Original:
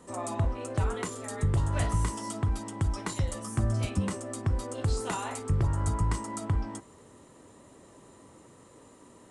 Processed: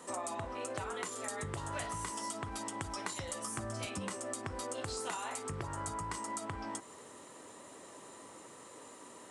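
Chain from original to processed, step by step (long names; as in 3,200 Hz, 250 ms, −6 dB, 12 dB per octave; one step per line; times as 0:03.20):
high-pass filter 660 Hz 6 dB per octave
downward compressor 5 to 1, threshold −43 dBFS, peak gain reduction 11.5 dB
level +6 dB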